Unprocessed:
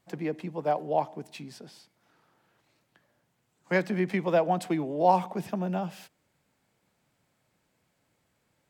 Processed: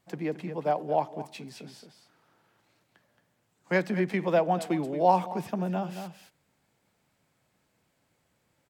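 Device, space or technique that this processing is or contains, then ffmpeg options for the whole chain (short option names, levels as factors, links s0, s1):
ducked delay: -filter_complex "[0:a]asplit=3[s0][s1][s2];[s1]adelay=223,volume=0.473[s3];[s2]apad=whole_len=393198[s4];[s3][s4]sidechaincompress=threshold=0.0316:ratio=8:attack=5.3:release=618[s5];[s0][s5]amix=inputs=2:normalize=0"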